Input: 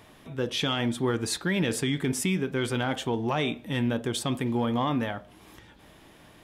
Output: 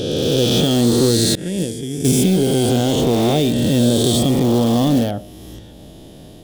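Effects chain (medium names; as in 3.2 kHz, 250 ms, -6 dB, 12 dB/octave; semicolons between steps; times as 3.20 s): reverse spectral sustain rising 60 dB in 2.32 s; bass shelf 490 Hz +6 dB; 1.35–2.05 s: expander -10 dBFS; in parallel at -11.5 dB: integer overflow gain 18 dB; on the sum: high-order bell 1.5 kHz -13.5 dB; trim +5.5 dB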